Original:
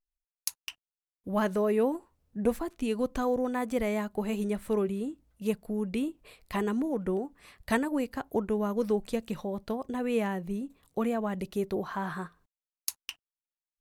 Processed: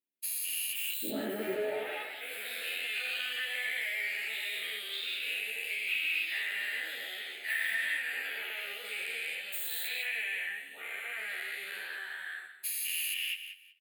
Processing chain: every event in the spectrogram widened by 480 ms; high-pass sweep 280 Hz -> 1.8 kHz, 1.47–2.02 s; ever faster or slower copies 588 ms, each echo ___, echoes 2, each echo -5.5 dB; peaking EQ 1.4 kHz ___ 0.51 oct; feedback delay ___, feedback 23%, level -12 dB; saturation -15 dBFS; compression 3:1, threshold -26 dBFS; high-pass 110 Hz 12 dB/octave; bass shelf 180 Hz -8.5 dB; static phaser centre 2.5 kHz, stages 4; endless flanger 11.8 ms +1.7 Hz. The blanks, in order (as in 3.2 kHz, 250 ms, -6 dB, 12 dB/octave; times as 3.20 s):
+6 st, -4.5 dB, 187 ms